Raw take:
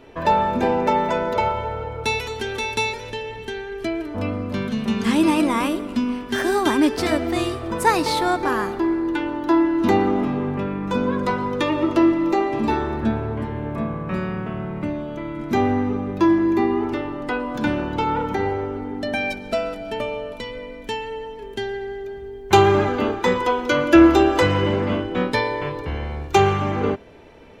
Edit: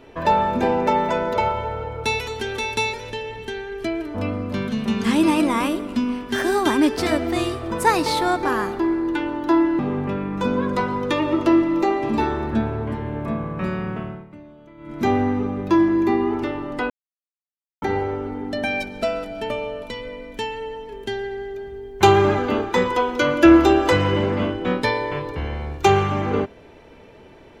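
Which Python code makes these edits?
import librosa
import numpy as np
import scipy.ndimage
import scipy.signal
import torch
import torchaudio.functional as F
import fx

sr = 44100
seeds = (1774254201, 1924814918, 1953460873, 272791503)

y = fx.edit(x, sr, fx.cut(start_s=9.79, length_s=0.5),
    fx.fade_down_up(start_s=14.48, length_s=1.08, db=-16.0, fade_s=0.29),
    fx.silence(start_s=17.4, length_s=0.92), tone=tone)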